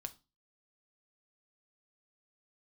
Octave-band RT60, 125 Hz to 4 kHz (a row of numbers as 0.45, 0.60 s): 0.40, 0.40, 0.30, 0.30, 0.25, 0.30 s